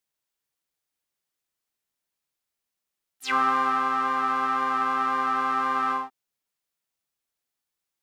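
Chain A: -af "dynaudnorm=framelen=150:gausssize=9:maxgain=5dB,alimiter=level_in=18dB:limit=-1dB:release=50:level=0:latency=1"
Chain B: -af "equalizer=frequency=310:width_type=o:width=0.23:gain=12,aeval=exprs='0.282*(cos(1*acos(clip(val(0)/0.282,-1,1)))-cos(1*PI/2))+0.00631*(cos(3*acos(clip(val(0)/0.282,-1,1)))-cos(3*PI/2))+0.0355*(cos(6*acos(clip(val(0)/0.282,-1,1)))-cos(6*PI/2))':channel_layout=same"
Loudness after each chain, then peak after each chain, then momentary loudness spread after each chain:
−9.0, −24.5 LKFS; −1.0, −11.0 dBFS; 4, 5 LU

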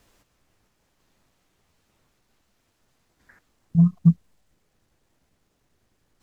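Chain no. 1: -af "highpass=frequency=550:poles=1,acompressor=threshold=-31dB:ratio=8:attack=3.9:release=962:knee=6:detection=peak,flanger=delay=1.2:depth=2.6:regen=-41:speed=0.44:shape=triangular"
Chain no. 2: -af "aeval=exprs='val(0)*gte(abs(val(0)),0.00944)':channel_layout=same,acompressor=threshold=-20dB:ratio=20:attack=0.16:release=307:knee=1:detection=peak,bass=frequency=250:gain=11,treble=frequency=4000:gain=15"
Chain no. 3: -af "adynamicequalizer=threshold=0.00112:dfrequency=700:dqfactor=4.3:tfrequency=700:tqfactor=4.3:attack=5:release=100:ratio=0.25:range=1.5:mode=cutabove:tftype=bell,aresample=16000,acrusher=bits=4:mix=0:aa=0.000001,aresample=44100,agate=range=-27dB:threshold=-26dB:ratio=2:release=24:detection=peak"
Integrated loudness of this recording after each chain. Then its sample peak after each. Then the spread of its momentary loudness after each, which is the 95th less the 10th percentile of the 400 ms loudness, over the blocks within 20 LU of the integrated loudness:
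−50.0, −21.5, −20.5 LKFS; −33.5, −10.0, −6.5 dBFS; 19, 8, 10 LU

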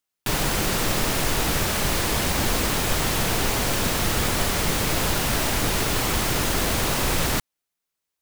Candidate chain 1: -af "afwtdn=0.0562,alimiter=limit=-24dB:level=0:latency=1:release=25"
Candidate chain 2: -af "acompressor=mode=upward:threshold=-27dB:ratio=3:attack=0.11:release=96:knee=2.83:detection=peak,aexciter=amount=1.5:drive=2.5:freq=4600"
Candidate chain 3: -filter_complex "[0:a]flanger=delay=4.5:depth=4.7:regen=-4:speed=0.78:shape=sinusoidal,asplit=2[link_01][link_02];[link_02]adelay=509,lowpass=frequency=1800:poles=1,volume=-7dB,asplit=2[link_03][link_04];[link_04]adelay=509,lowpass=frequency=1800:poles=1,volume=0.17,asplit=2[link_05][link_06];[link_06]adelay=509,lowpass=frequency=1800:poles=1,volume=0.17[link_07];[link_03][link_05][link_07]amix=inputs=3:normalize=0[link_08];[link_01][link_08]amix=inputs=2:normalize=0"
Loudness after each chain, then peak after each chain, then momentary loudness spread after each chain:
−33.5, −19.5, −25.5 LKFS; −24.0, −7.5, −11.5 dBFS; 1, 0, 3 LU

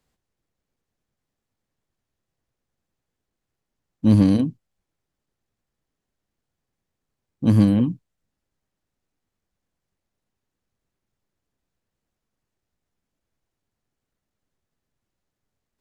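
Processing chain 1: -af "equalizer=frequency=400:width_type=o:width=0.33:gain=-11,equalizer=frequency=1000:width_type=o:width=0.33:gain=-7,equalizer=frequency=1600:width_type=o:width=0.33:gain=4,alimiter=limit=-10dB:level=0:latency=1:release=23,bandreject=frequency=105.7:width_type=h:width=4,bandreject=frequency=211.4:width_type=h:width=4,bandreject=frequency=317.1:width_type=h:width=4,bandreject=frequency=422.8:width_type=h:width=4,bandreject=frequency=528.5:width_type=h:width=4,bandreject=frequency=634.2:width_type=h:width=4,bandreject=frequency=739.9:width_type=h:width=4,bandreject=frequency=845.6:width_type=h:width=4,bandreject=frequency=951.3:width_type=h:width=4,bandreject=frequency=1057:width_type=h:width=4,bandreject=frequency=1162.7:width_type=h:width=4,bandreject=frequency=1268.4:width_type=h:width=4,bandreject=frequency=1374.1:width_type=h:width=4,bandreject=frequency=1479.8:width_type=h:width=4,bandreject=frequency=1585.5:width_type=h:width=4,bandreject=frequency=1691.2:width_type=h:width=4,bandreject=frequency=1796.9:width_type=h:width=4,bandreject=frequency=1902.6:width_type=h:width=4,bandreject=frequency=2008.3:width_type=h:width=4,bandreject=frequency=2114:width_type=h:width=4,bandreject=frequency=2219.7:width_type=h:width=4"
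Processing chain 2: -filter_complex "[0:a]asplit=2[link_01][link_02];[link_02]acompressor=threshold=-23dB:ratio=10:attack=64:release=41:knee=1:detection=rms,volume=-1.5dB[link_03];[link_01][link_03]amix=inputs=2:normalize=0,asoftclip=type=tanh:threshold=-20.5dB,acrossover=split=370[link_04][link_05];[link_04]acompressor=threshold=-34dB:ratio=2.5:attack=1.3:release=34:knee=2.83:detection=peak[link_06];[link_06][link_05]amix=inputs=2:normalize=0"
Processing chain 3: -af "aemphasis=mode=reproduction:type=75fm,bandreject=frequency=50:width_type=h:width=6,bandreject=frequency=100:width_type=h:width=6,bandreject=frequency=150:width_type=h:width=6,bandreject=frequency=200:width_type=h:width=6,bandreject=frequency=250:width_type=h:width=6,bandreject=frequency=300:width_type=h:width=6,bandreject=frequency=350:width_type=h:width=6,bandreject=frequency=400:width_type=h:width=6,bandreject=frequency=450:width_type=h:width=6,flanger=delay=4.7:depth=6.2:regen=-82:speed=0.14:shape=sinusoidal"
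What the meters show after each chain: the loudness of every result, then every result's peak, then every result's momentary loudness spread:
−22.0, −30.5, −24.0 LKFS; −8.0, −18.5, −9.5 dBFS; 9, 7, 10 LU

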